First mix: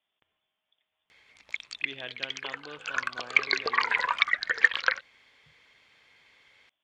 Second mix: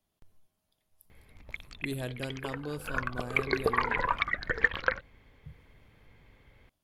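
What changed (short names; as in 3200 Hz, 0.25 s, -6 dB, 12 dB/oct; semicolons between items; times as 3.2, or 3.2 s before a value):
speech: remove Chebyshev low-pass 3500 Hz, order 8; master: remove weighting filter ITU-R 468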